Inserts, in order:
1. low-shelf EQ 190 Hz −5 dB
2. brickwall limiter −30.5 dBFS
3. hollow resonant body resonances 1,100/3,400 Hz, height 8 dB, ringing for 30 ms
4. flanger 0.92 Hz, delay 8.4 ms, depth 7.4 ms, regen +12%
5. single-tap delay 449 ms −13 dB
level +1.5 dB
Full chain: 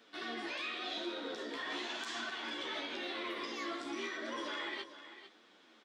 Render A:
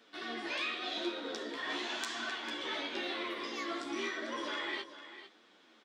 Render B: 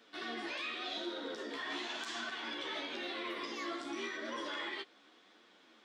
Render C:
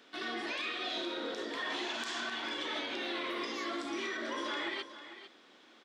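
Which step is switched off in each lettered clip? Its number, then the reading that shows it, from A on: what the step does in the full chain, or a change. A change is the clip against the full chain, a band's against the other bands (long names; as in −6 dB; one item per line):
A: 2, average gain reduction 1.5 dB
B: 5, change in momentary loudness spread −2 LU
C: 4, change in integrated loudness +3.0 LU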